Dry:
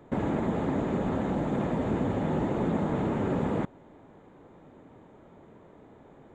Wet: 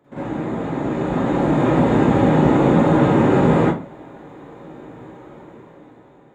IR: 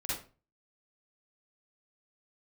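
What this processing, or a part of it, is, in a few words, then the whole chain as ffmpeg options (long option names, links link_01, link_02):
far laptop microphone: -filter_complex "[1:a]atrim=start_sample=2205[link_01];[0:a][link_01]afir=irnorm=-1:irlink=0,highpass=frequency=190:poles=1,dynaudnorm=framelen=360:gausssize=7:maxgain=13dB"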